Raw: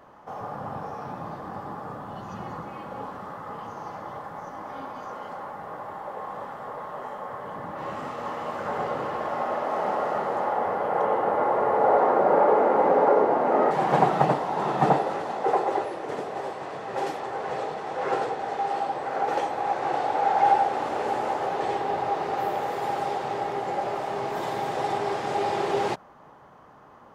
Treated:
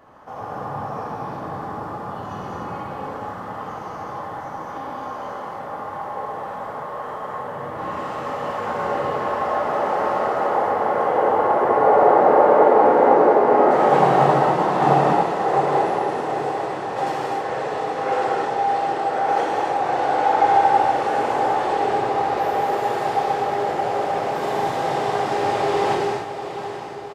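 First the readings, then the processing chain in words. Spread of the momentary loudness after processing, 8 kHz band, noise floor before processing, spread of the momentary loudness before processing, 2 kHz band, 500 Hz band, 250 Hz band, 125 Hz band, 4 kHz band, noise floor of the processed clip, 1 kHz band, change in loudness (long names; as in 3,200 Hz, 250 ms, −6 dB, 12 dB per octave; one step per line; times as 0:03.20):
17 LU, can't be measured, −50 dBFS, 17 LU, +6.5 dB, +6.0 dB, +6.0 dB, +6.0 dB, +6.0 dB, −32 dBFS, +6.0 dB, +6.0 dB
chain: feedback delay with all-pass diffusion 763 ms, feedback 49%, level −10 dB
reverb whose tail is shaped and stops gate 320 ms flat, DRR −4 dB
downsampling to 32,000 Hz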